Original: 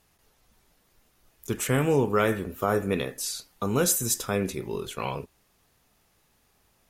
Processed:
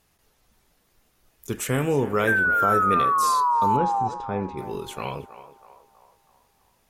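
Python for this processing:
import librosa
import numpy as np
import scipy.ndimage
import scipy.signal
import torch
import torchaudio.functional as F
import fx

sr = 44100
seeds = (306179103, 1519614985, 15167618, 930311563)

p1 = fx.spec_paint(x, sr, seeds[0], shape='fall', start_s=2.27, length_s=1.81, low_hz=760.0, high_hz=1600.0, level_db=-21.0)
p2 = fx.spacing_loss(p1, sr, db_at_10k=39, at=(3.75, 4.57), fade=0.02)
y = p2 + fx.echo_banded(p2, sr, ms=322, feedback_pct=53, hz=850.0, wet_db=-12, dry=0)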